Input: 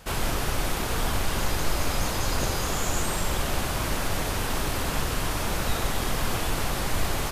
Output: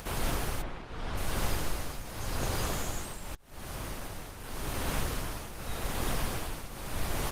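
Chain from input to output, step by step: 0.61–1.16 s: low-pass 2.5 kHz -> 5.1 kHz 12 dB/octave; 1.88–2.80 s: dynamic bell 110 Hz, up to +3 dB, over -48 dBFS, Q 3.6; 3.35–4.70 s: fade in; upward compressor, threshold -27 dBFS; tremolo triangle 0.86 Hz, depth 75%; trim -3 dB; Opus 24 kbps 48 kHz

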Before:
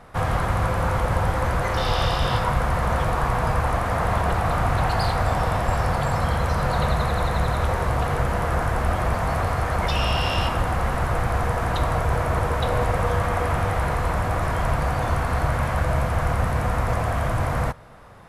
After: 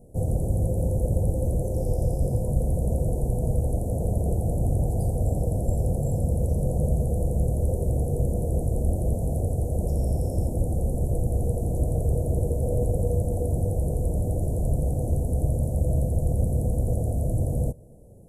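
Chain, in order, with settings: inverse Chebyshev band-stop 1.1–4.1 kHz, stop band 50 dB

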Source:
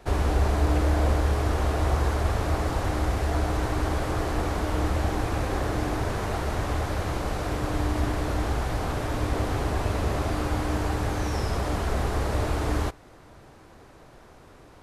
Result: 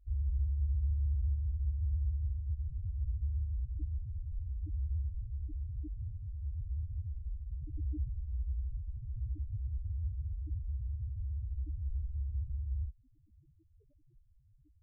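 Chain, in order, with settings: bass shelf 270 Hz +2.5 dB; in parallel at -7.5 dB: integer overflow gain 15.5 dB; on the sum: loudest bins only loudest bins 1; trim -7 dB

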